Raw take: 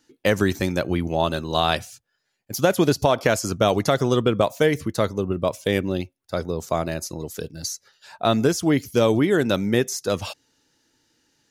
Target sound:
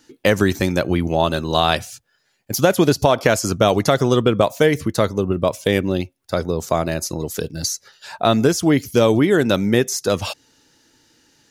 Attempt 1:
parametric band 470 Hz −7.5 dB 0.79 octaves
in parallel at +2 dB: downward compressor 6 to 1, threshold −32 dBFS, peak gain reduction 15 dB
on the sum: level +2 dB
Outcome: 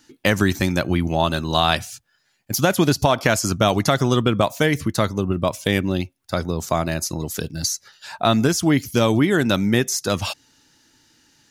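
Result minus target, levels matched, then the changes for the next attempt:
500 Hz band −3.0 dB
remove: parametric band 470 Hz −7.5 dB 0.79 octaves

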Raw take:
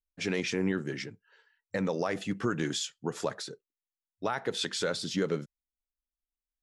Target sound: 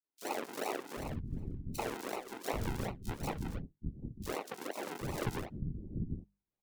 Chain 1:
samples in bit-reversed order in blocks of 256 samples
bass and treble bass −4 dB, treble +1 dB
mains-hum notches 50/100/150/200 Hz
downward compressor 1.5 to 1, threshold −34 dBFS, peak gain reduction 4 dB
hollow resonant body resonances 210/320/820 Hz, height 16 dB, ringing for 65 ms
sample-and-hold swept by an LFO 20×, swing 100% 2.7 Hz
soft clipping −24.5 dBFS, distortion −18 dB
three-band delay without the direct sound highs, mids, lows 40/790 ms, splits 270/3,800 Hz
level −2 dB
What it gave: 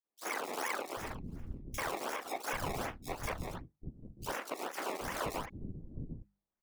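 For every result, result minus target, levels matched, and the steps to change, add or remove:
soft clipping: distortion +11 dB; sample-and-hold swept by an LFO: distortion −8 dB
change: soft clipping −17.5 dBFS, distortion −29 dB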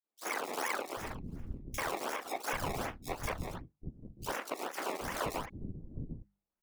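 sample-and-hold swept by an LFO: distortion −8 dB
change: sample-and-hold swept by an LFO 52×, swing 100% 2.7 Hz

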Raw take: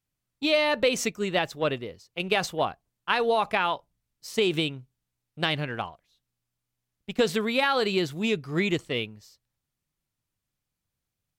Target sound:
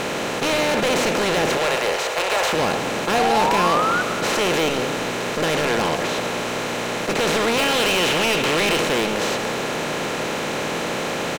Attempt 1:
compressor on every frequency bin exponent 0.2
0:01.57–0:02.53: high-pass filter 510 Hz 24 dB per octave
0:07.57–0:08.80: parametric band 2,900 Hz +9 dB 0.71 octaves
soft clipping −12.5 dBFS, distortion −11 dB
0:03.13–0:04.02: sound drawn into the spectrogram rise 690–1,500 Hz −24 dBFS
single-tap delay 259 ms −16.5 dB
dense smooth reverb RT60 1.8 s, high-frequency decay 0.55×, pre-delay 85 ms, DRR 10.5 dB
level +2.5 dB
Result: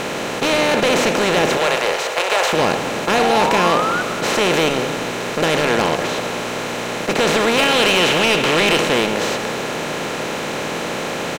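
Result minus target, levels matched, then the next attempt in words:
soft clipping: distortion −5 dB
compressor on every frequency bin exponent 0.2
0:01.57–0:02.53: high-pass filter 510 Hz 24 dB per octave
0:07.57–0:08.80: parametric band 2,900 Hz +9 dB 0.71 octaves
soft clipping −19.5 dBFS, distortion −6 dB
0:03.13–0:04.02: sound drawn into the spectrogram rise 690–1,500 Hz −24 dBFS
single-tap delay 259 ms −16.5 dB
dense smooth reverb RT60 1.8 s, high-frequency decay 0.55×, pre-delay 85 ms, DRR 10.5 dB
level +2.5 dB

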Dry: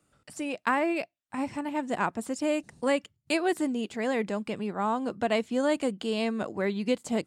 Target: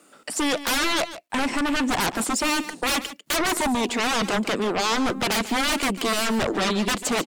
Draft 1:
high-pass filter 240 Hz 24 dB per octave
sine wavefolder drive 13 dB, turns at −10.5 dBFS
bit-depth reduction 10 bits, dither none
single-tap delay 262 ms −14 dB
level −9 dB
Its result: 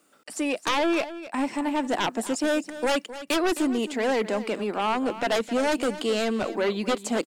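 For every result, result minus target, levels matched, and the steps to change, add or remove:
echo 116 ms late; sine wavefolder: distortion −17 dB
change: single-tap delay 146 ms −14 dB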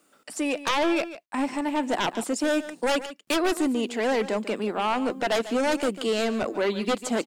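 sine wavefolder: distortion −17 dB
change: sine wavefolder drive 22 dB, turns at −10.5 dBFS

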